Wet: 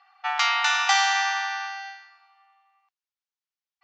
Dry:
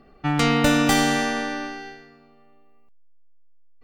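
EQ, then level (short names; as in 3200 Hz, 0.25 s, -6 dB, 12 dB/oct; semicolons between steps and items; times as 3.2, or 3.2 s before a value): brick-wall FIR high-pass 720 Hz; steep low-pass 6600 Hz 48 dB/oct; +2.0 dB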